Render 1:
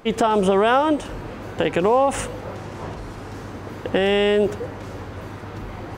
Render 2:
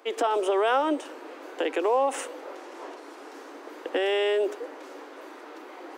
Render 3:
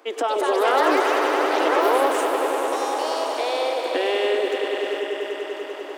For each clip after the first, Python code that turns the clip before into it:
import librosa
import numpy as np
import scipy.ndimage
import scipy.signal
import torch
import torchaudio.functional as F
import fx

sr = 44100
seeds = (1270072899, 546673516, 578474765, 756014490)

y1 = scipy.signal.sosfilt(scipy.signal.butter(12, 280.0, 'highpass', fs=sr, output='sos'), x)
y1 = y1 * librosa.db_to_amplitude(-6.0)
y2 = fx.echo_swell(y1, sr, ms=98, loudest=5, wet_db=-9)
y2 = fx.echo_pitch(y2, sr, ms=250, semitones=4, count=3, db_per_echo=-3.0)
y2 = y2 * librosa.db_to_amplitude(1.5)